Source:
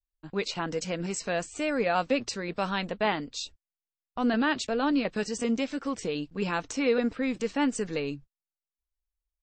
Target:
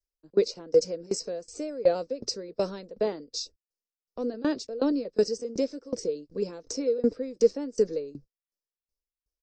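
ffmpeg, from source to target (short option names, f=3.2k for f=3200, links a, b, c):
-filter_complex "[0:a]firequalizer=gain_entry='entry(160,0);entry(490,15);entry(750,-4);entry(3100,-11);entry(5100,12);entry(7300,0)':delay=0.05:min_phase=1,acrossover=split=230|910|2200[a][b][c][d];[c]asoftclip=type=tanh:threshold=-35dB[e];[a][b][e][d]amix=inputs=4:normalize=0,aeval=exprs='val(0)*pow(10,-22*if(lt(mod(2.7*n/s,1),2*abs(2.7)/1000),1-mod(2.7*n/s,1)/(2*abs(2.7)/1000),(mod(2.7*n/s,1)-2*abs(2.7)/1000)/(1-2*abs(2.7)/1000))/20)':c=same"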